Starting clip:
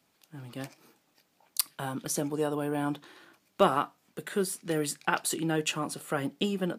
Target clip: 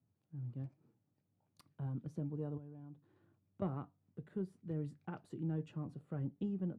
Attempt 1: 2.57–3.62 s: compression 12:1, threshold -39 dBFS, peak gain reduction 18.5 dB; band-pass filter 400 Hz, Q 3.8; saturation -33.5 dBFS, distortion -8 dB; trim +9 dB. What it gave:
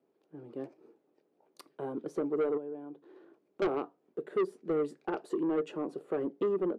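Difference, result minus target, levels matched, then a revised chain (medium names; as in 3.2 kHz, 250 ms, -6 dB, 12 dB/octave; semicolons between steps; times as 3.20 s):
125 Hz band -19.0 dB
2.57–3.62 s: compression 12:1, threshold -39 dBFS, peak gain reduction 18.5 dB; band-pass filter 100 Hz, Q 3.8; saturation -33.5 dBFS, distortion -29 dB; trim +9 dB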